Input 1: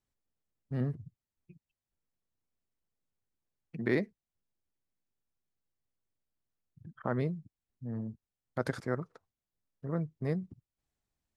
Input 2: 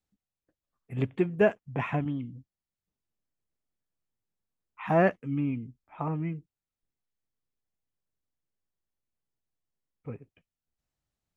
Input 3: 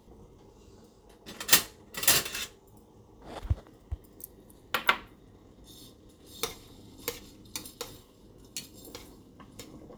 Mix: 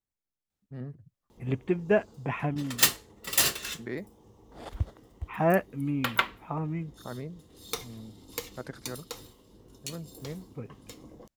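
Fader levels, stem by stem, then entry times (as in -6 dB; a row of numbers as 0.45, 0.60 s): -7.0, -1.0, -1.0 dB; 0.00, 0.50, 1.30 s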